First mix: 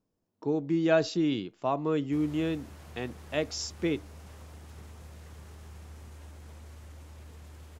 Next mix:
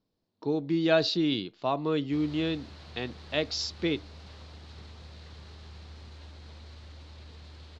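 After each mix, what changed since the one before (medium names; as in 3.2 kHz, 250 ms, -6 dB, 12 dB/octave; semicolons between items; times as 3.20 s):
master: add resonant low-pass 4.2 kHz, resonance Q 4.4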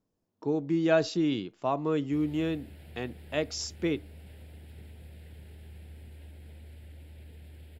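background: add static phaser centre 2.7 kHz, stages 4; master: remove resonant low-pass 4.2 kHz, resonance Q 4.4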